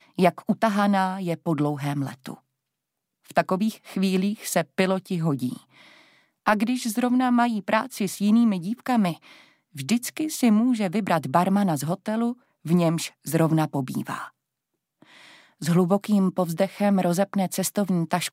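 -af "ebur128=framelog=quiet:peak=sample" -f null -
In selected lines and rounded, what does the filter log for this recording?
Integrated loudness:
  I:         -24.0 LUFS
  Threshold: -34.6 LUFS
Loudness range:
  LRA:         3.5 LU
  Threshold: -45.0 LUFS
  LRA low:   -27.0 LUFS
  LRA high:  -23.5 LUFS
Sample peak:
  Peak:       -6.7 dBFS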